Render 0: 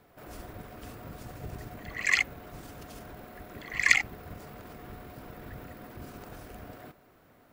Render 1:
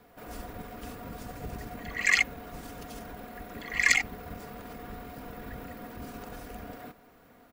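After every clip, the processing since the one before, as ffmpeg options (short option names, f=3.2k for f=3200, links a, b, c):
-filter_complex "[0:a]aecho=1:1:4.2:0.45,acrossover=split=840|4000[a][b][c];[b]alimiter=limit=-12dB:level=0:latency=1:release=128[d];[a][d][c]amix=inputs=3:normalize=0,volume=2dB"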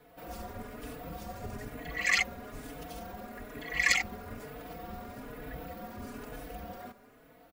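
-filter_complex "[0:a]equalizer=f=570:t=o:w=0.45:g=3,asplit=2[a][b];[b]adelay=4.2,afreqshift=1.1[c];[a][c]amix=inputs=2:normalize=1,volume=1.5dB"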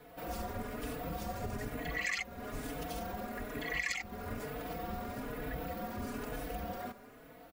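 -af "acompressor=threshold=-37dB:ratio=6,volume=3.5dB"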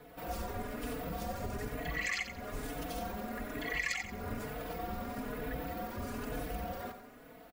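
-af "aphaser=in_gain=1:out_gain=1:delay=4.9:decay=0.22:speed=0.47:type=triangular,aecho=1:1:89|178|267:0.316|0.0949|0.0285"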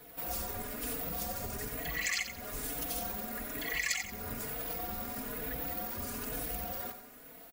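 -af "crystalizer=i=3.5:c=0,volume=-3dB"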